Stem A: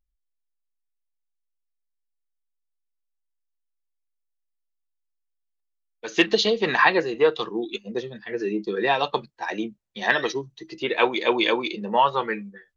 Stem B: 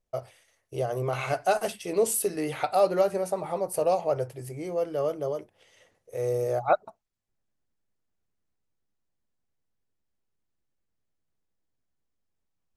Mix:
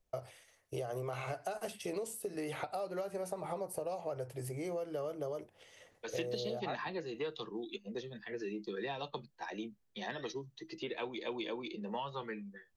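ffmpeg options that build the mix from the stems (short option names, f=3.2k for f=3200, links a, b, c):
-filter_complex "[0:a]acrossover=split=210|3000[a][b][c];[b]acompressor=threshold=-35dB:ratio=2[d];[a][d][c]amix=inputs=3:normalize=0,volume=-7.5dB[e];[1:a]acompressor=threshold=-34dB:ratio=6,volume=0.5dB[f];[e][f]amix=inputs=2:normalize=0,acrossover=split=420|970[g][h][i];[g]acompressor=threshold=-41dB:ratio=4[j];[h]acompressor=threshold=-40dB:ratio=4[k];[i]acompressor=threshold=-45dB:ratio=4[l];[j][k][l]amix=inputs=3:normalize=0"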